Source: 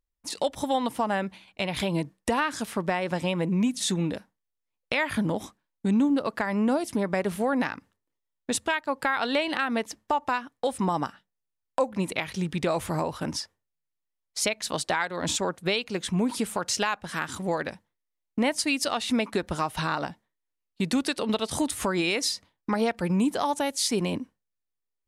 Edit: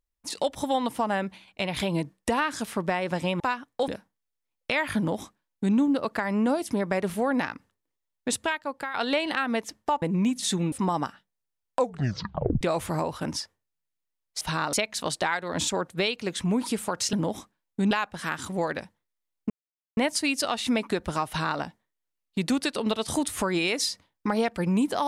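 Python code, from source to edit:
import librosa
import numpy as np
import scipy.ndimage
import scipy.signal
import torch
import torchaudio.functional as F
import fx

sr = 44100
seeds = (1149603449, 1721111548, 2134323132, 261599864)

y = fx.edit(x, sr, fx.swap(start_s=3.4, length_s=0.7, other_s=10.24, other_length_s=0.48),
    fx.duplicate(start_s=5.19, length_s=0.78, to_s=16.81),
    fx.fade_out_to(start_s=8.62, length_s=0.54, floor_db=-10.0),
    fx.tape_stop(start_s=11.79, length_s=0.82),
    fx.insert_silence(at_s=18.4, length_s=0.47),
    fx.duplicate(start_s=19.71, length_s=0.32, to_s=14.41), tone=tone)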